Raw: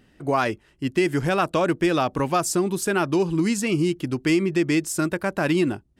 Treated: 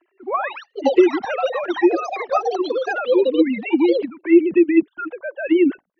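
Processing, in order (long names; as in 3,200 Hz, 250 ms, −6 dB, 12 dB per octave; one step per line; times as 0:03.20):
three sine waves on the formant tracks
flanger swept by the level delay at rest 3 ms, full sweep at −14 dBFS
delay with pitch and tempo change per echo 210 ms, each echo +7 semitones, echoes 2, each echo −6 dB
low-pass that shuts in the quiet parts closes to 2,400 Hz, open at −16 dBFS
level +5 dB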